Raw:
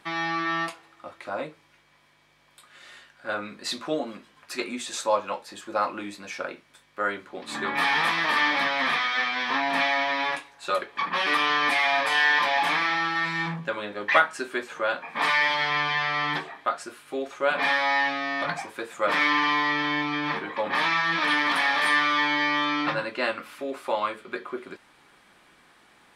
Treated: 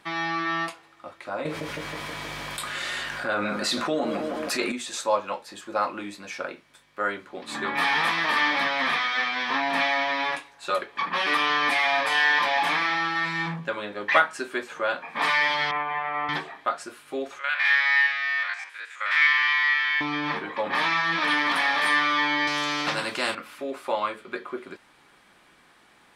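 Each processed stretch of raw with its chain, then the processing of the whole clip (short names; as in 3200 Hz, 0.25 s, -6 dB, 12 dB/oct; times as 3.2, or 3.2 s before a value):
1.45–4.72 analogue delay 0.159 s, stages 2048, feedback 59%, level -12 dB + fast leveller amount 70%
15.71–16.29 transient shaper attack +3 dB, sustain -11 dB + speaker cabinet 110–2100 Hz, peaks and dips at 140 Hz -10 dB, 240 Hz -7 dB, 790 Hz +5 dB, 1700 Hz -7 dB
17.39–20.01 stepped spectrum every 50 ms + resonant high-pass 1800 Hz, resonance Q 2.1 + air absorption 51 m
22.47–23.35 HPF 140 Hz + spectral compressor 2:1
whole clip: dry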